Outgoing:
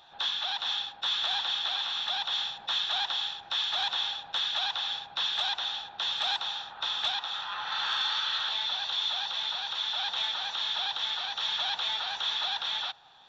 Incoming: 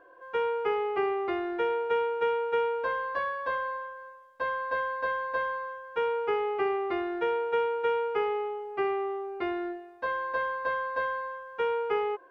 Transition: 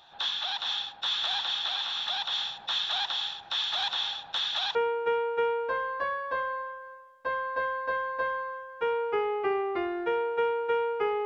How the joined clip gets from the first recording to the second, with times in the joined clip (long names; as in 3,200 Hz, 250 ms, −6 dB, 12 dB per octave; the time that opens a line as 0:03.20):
outgoing
0:04.75: continue with incoming from 0:01.90